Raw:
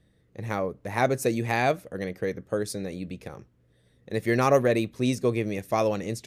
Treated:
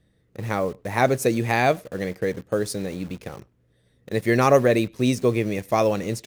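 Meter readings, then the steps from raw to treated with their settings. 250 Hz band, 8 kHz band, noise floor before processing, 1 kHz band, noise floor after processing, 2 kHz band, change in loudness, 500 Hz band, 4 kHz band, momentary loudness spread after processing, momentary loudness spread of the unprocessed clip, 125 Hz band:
+4.0 dB, +4.0 dB, -64 dBFS, +4.0 dB, -64 dBFS, +4.0 dB, +4.0 dB, +4.0 dB, +4.0 dB, 13 LU, 13 LU, +4.0 dB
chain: in parallel at -4.5 dB: bit crusher 7-bit; on the sum: speakerphone echo 100 ms, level -27 dB

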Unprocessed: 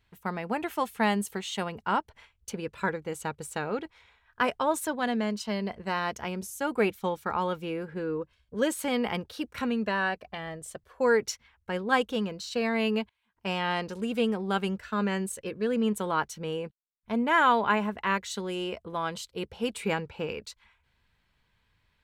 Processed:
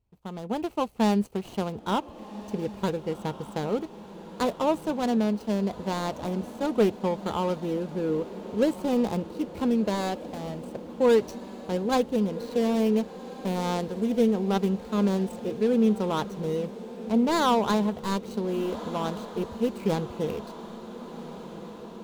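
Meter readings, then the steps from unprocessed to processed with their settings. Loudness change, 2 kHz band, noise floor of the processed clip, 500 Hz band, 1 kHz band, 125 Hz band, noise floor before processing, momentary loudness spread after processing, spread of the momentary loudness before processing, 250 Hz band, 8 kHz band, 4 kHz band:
+2.5 dB, -8.5 dB, -44 dBFS, +4.0 dB, -1.0 dB, +5.5 dB, -73 dBFS, 15 LU, 10 LU, +5.5 dB, -4.0 dB, -1.5 dB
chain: median filter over 25 samples; level rider gain up to 9 dB; peaking EQ 1.6 kHz -7 dB 1.7 oct; echo that smears into a reverb 1499 ms, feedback 65%, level -14.5 dB; trim -3.5 dB

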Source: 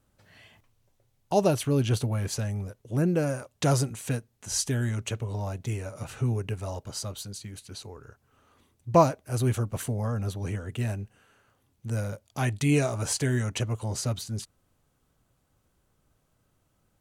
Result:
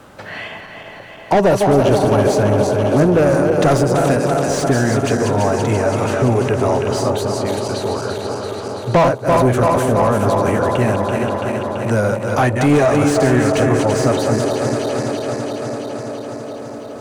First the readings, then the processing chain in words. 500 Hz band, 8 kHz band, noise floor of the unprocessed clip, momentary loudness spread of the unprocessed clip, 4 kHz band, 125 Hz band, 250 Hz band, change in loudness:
+17.0 dB, +6.0 dB, -71 dBFS, 14 LU, +9.5 dB, +9.0 dB, +14.0 dB, +12.5 dB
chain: backward echo that repeats 167 ms, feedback 80%, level -8.5 dB; dynamic bell 2.9 kHz, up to -6 dB, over -48 dBFS, Q 0.83; overdrive pedal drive 30 dB, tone 1.2 kHz, clips at -4 dBFS; feedback echo behind a band-pass 407 ms, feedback 69%, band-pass 500 Hz, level -7.5 dB; three bands compressed up and down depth 40%; trim +1.5 dB

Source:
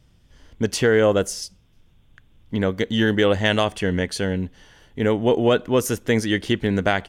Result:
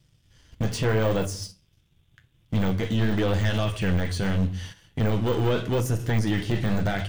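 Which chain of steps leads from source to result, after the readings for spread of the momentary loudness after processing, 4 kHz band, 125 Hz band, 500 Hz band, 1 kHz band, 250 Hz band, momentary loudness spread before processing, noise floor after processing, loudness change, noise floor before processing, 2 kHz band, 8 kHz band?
7 LU, -7.5 dB, +3.0 dB, -8.0 dB, -5.5 dB, -4.5 dB, 10 LU, -65 dBFS, -4.5 dB, -57 dBFS, -7.5 dB, -7.0 dB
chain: in parallel at +3 dB: compression 6:1, threshold -33 dBFS, peak gain reduction 18.5 dB; on the sum: peaking EQ 98 Hz +14.5 dB 2.4 oct; overload inside the chain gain 8 dB; simulated room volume 560 m³, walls furnished, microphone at 0.72 m; waveshaping leveller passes 1; flange 0.83 Hz, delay 5.6 ms, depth 9.9 ms, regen -54%; tilt shelf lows -7.5 dB, about 1.3 kHz; de-esser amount 85%; gate -35 dBFS, range -12 dB; trim -2.5 dB

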